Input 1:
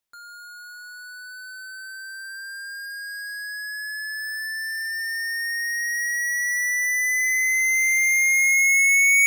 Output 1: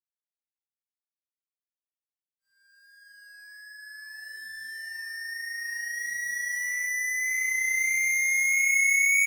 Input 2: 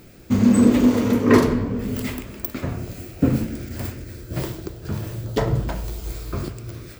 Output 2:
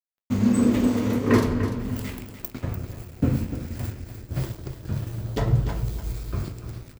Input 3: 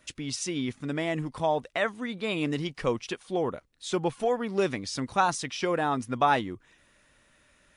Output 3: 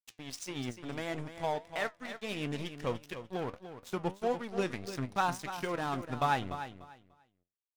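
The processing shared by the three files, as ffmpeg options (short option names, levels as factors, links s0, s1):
-af "asubboost=boost=2:cutoff=200,aeval=exprs='sgn(val(0))*max(abs(val(0))-0.0168,0)':c=same,flanger=delay=7.1:depth=4.5:regen=76:speed=1.6:shape=triangular,aecho=1:1:295|590|885:0.282|0.0592|0.0124"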